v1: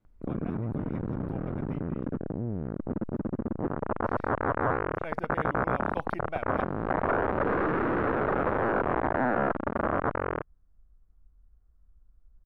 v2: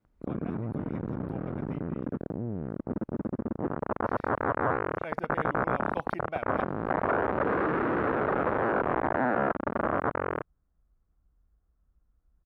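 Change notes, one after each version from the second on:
master: add high-pass 99 Hz 6 dB/octave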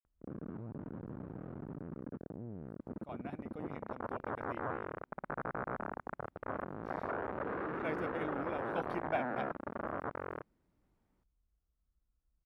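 speech: entry +2.80 s; background -11.5 dB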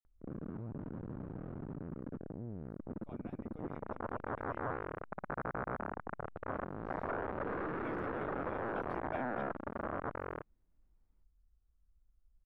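speech -9.0 dB; master: remove high-pass 99 Hz 6 dB/octave

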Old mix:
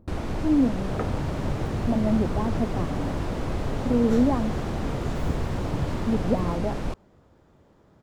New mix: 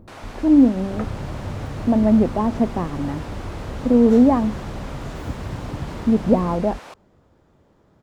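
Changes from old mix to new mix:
speech +8.0 dB; first sound: add high-pass 730 Hz 12 dB/octave

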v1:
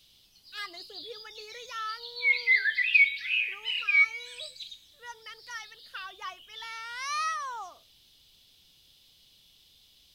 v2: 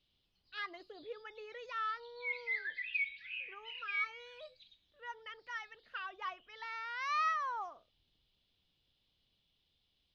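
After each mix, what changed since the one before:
background -11.5 dB; master: add distance through air 280 m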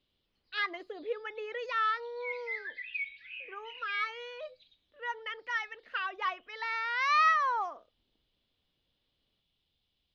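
speech: add graphic EQ 125/250/500/1000/2000/4000/8000 Hz -11/+10/+8/+5/+8/+7/+4 dB; background: add treble shelf 7 kHz -9.5 dB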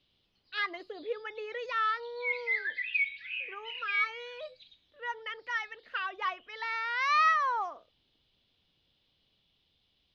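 background +7.0 dB; master: add bass shelf 65 Hz -6 dB

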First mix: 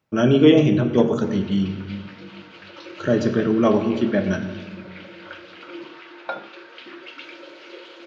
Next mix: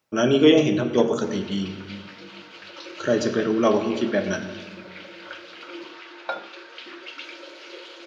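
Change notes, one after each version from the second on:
master: add tone controls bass -9 dB, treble +8 dB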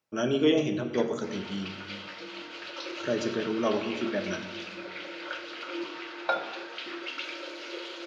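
speech -8.0 dB; background: send on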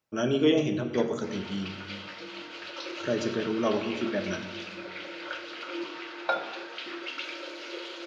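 speech: add bass shelf 96 Hz +7.5 dB

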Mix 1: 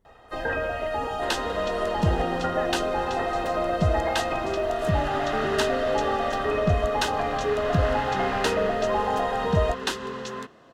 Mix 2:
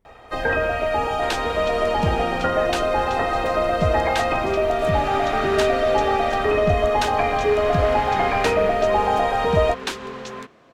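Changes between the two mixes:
first sound +6.5 dB; master: remove Butterworth band-stop 2.3 kHz, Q 7.2

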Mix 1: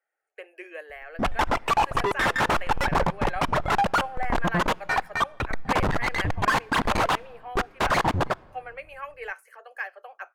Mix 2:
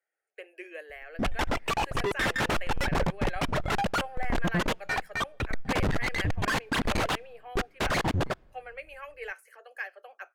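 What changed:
background: send -9.5 dB; master: add peaking EQ 990 Hz -8.5 dB 1.2 oct

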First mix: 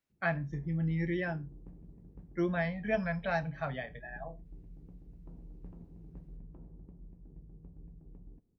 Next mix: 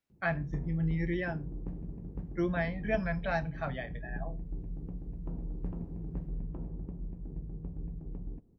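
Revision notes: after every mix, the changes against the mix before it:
background +11.5 dB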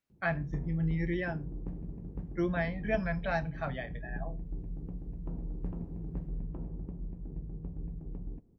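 no change

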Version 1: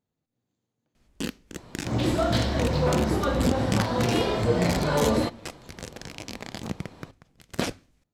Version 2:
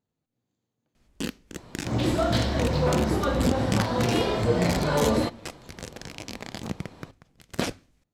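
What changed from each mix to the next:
no change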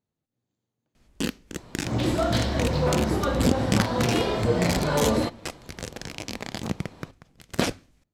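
speech: send -11.5 dB; first sound +3.5 dB

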